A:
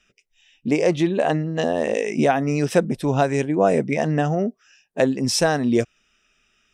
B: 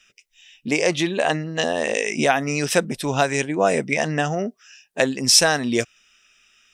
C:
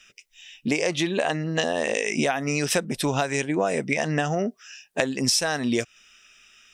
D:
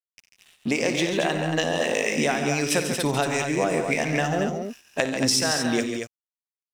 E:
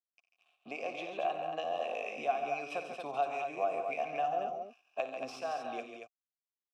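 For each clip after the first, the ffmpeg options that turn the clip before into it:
ffmpeg -i in.wav -af "tiltshelf=frequency=1100:gain=-7,volume=2.5dB" out.wav
ffmpeg -i in.wav -af "acompressor=threshold=-24dB:ratio=6,volume=3.5dB" out.wav
ffmpeg -i in.wav -af "aeval=exprs='sgn(val(0))*max(abs(val(0))-0.00708,0)':channel_layout=same,aecho=1:1:56|90|141|164|229:0.237|0.178|0.355|0.2|0.473" out.wav
ffmpeg -i in.wav -filter_complex "[0:a]acrossover=split=280|4600[link_01][link_02][link_03];[link_03]aeval=exprs='clip(val(0),-1,0.0188)':channel_layout=same[link_04];[link_01][link_02][link_04]amix=inputs=3:normalize=0,asplit=3[link_05][link_06][link_07];[link_05]bandpass=frequency=730:width_type=q:width=8,volume=0dB[link_08];[link_06]bandpass=frequency=1090:width_type=q:width=8,volume=-6dB[link_09];[link_07]bandpass=frequency=2440:width_type=q:width=8,volume=-9dB[link_10];[link_08][link_09][link_10]amix=inputs=3:normalize=0,volume=-1.5dB" out.wav

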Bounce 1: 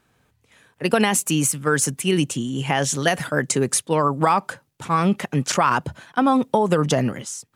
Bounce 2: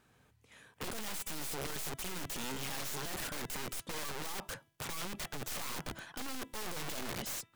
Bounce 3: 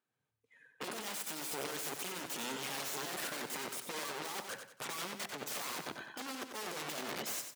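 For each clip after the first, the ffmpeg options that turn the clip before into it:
ffmpeg -i in.wav -af "aeval=exprs='(tanh(28.2*val(0)+0.5)-tanh(0.5))/28.2':channel_layout=same,aeval=exprs='(mod(35.5*val(0)+1,2)-1)/35.5':channel_layout=same,bandreject=frequency=331.6:width_type=h:width=4,bandreject=frequency=663.2:width_type=h:width=4,bandreject=frequency=994.8:width_type=h:width=4,bandreject=frequency=1326.4:width_type=h:width=4,bandreject=frequency=1658:width_type=h:width=4,bandreject=frequency=1989.6:width_type=h:width=4,bandreject=frequency=2321.2:width_type=h:width=4,bandreject=frequency=2652.8:width_type=h:width=4,bandreject=frequency=2984.4:width_type=h:width=4,bandreject=frequency=3316:width_type=h:width=4,bandreject=frequency=3647.6:width_type=h:width=4,volume=-2dB" out.wav
ffmpeg -i in.wav -filter_complex "[0:a]afftdn=noise_reduction=21:noise_floor=-52,highpass=250,asplit=2[link_01][link_02];[link_02]aecho=0:1:93|186|279|372:0.422|0.152|0.0547|0.0197[link_03];[link_01][link_03]amix=inputs=2:normalize=0,volume=1dB" out.wav

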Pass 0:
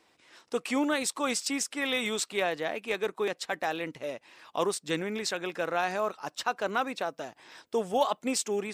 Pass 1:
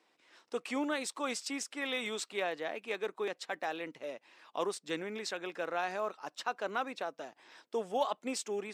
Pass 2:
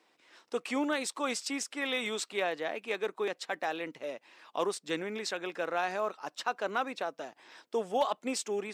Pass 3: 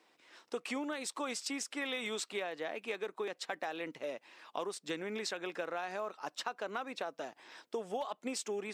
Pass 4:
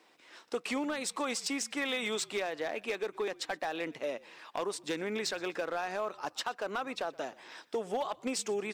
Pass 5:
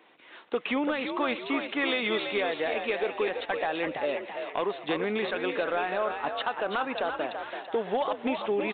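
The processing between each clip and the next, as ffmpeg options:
ffmpeg -i in.wav -af "highpass=220,highshelf=frequency=9000:gain=-9,volume=-5.5dB" out.wav
ffmpeg -i in.wav -af "asoftclip=type=hard:threshold=-22dB,volume=3dB" out.wav
ffmpeg -i in.wav -af "acompressor=threshold=-34dB:ratio=10" out.wav
ffmpeg -i in.wav -filter_complex "[0:a]asoftclip=type=hard:threshold=-31dB,asplit=3[link_01][link_02][link_03];[link_02]adelay=122,afreqshift=-54,volume=-23dB[link_04];[link_03]adelay=244,afreqshift=-108,volume=-32.4dB[link_05];[link_01][link_04][link_05]amix=inputs=3:normalize=0,volume=4.5dB" out.wav
ffmpeg -i in.wav -filter_complex "[0:a]asplit=6[link_01][link_02][link_03][link_04][link_05][link_06];[link_02]adelay=334,afreqshift=55,volume=-6.5dB[link_07];[link_03]adelay=668,afreqshift=110,volume=-13.2dB[link_08];[link_04]adelay=1002,afreqshift=165,volume=-20dB[link_09];[link_05]adelay=1336,afreqshift=220,volume=-26.7dB[link_10];[link_06]adelay=1670,afreqshift=275,volume=-33.5dB[link_11];[link_01][link_07][link_08][link_09][link_10][link_11]amix=inputs=6:normalize=0,aresample=8000,aresample=44100,volume=5.5dB" out.wav

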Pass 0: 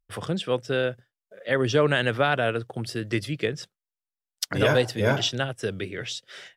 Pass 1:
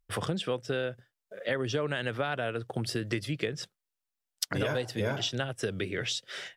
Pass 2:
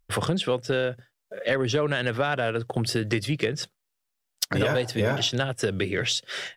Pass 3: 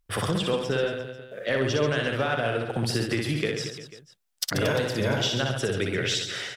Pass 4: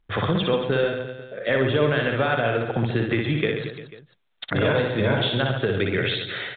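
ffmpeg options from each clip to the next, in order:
ffmpeg -i in.wav -af "acompressor=threshold=-31dB:ratio=6,volume=3dB" out.wav
ffmpeg -i in.wav -af "asoftclip=type=tanh:threshold=-18.5dB,volume=7dB" out.wav
ffmpeg -i in.wav -af "aecho=1:1:60|135|228.8|345.9|492.4:0.631|0.398|0.251|0.158|0.1,volume=-2.5dB" out.wav
ffmpeg -i in.wav -af "bandreject=frequency=2900:width=10,volume=4dB" -ar 8000 -c:a pcm_mulaw out.wav

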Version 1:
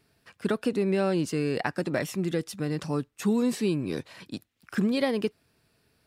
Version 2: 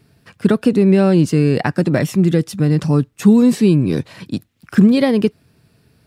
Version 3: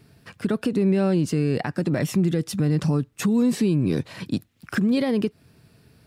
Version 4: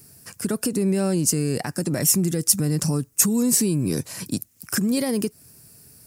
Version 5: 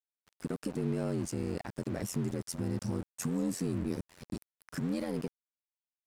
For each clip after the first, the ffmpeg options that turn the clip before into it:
ffmpeg -i in.wav -af "equalizer=frequency=130:width=0.54:gain=10.5,volume=7.5dB" out.wav
ffmpeg -i in.wav -af "acompressor=threshold=-13dB:ratio=6,alimiter=limit=-13.5dB:level=0:latency=1:release=211" out.wav
ffmpeg -i in.wav -af "aexciter=amount=13.1:drive=1.5:freq=5300,volume=-1.5dB" out.wav
ffmpeg -i in.wav -af "aeval=exprs='val(0)*sin(2*PI*44*n/s)':channel_layout=same,aeval=exprs='val(0)*gte(abs(val(0)),0.0282)':channel_layout=same,aemphasis=mode=reproduction:type=75kf,volume=-8dB" out.wav

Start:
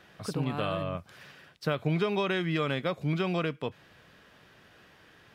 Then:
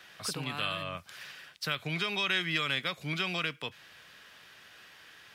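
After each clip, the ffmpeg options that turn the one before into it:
ffmpeg -i in.wav -filter_complex "[0:a]tiltshelf=frequency=940:gain=-8.5,acrossover=split=250|1400[link_01][link_02][link_03];[link_02]alimiter=level_in=9dB:limit=-24dB:level=0:latency=1:release=198,volume=-9dB[link_04];[link_01][link_04][link_03]amix=inputs=3:normalize=0" out.wav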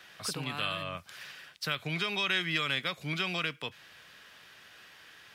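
ffmpeg -i in.wav -af anull out.wav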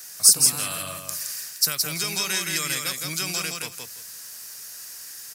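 ffmpeg -i in.wav -filter_complex "[0:a]aexciter=amount=9.7:drive=9.3:freq=5100,asplit=2[link_01][link_02];[link_02]aecho=0:1:168|336|504:0.631|0.114|0.0204[link_03];[link_01][link_03]amix=inputs=2:normalize=0" out.wav

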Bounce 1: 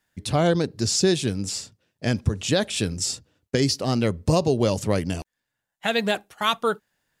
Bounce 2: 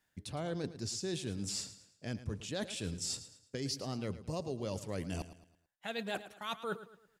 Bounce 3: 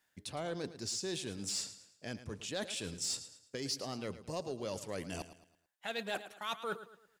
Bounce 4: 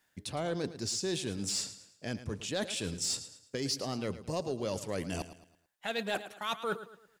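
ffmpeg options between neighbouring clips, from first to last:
ffmpeg -i in.wav -af "areverse,acompressor=threshold=-30dB:ratio=10,areverse,aecho=1:1:110|220|330|440:0.2|0.0758|0.0288|0.0109,volume=-5dB" out.wav
ffmpeg -i in.wav -filter_complex "[0:a]lowshelf=frequency=230:gain=-11.5,asplit=2[link_01][link_02];[link_02]asoftclip=type=hard:threshold=-36.5dB,volume=-6.5dB[link_03];[link_01][link_03]amix=inputs=2:normalize=0,volume=-1dB" out.wav
ffmpeg -i in.wav -af "lowshelf=frequency=390:gain=3.5,volume=3.5dB" out.wav

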